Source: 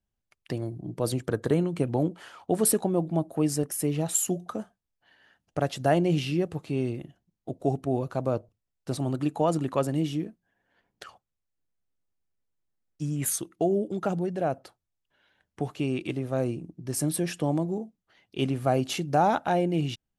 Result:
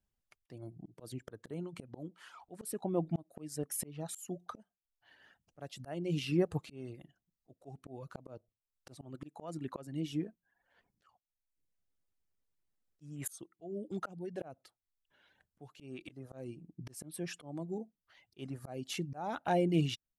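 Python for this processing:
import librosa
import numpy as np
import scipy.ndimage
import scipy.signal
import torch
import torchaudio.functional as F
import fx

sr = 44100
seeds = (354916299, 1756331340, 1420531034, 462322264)

y = fx.dereverb_blind(x, sr, rt60_s=0.61)
y = fx.auto_swell(y, sr, attack_ms=621.0)
y = y * librosa.db_to_amplitude(-1.0)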